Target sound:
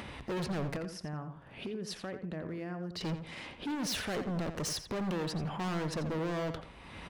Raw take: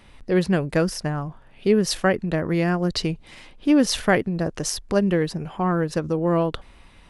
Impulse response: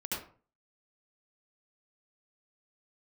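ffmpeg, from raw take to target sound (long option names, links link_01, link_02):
-filter_complex "[0:a]highpass=78,highshelf=frequency=5200:gain=-9.5,acompressor=mode=upward:threshold=-36dB:ratio=2.5,alimiter=limit=-18.5dB:level=0:latency=1:release=22,asettb=1/sr,asplit=3[link_01][link_02][link_03];[link_01]atrim=end=0.764[link_04];[link_02]atrim=start=0.76:end=3.01,asetpts=PTS-STARTPTS,afade=type=in:duration=0.004:curve=qsin,afade=type=out:start_time=2.246:duration=0.004:curve=qsin,acompressor=threshold=-37dB:ratio=10[link_05];[link_03]atrim=start=3.006[link_06];[link_04][link_05]acrossfade=duration=0.004:curve1=hsin:curve2=qsin[link_07];[link_07][link_06]acrossfade=duration=0.004:curve1=qsin:curve2=hsin,volume=33dB,asoftclip=hard,volume=-33dB,asplit=2[link_08][link_09];[link_09]adelay=86,lowpass=frequency=4600:poles=1,volume=-9dB,asplit=2[link_10][link_11];[link_11]adelay=86,lowpass=frequency=4600:poles=1,volume=0.25,asplit=2[link_12][link_13];[link_13]adelay=86,lowpass=frequency=4600:poles=1,volume=0.25[link_14];[link_08][link_10][link_12][link_14]amix=inputs=4:normalize=0"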